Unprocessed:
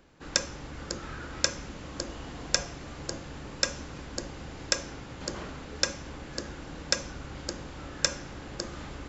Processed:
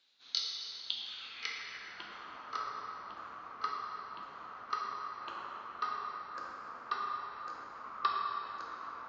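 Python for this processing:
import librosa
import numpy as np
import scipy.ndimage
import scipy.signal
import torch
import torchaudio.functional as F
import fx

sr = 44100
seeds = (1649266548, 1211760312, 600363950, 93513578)

y = fx.pitch_ramps(x, sr, semitones=-9.0, every_ms=1057)
y = fx.filter_sweep_bandpass(y, sr, from_hz=3900.0, to_hz=1200.0, start_s=0.83, end_s=2.2, q=5.9)
y = fx.rev_plate(y, sr, seeds[0], rt60_s=2.9, hf_ratio=0.75, predelay_ms=0, drr_db=-2.0)
y = F.gain(torch.from_numpy(y), 5.5).numpy()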